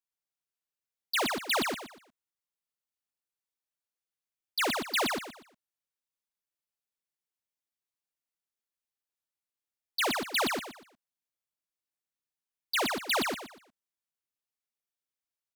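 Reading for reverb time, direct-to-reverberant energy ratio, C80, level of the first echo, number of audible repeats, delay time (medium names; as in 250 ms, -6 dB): no reverb, no reverb, no reverb, -4.0 dB, 3, 120 ms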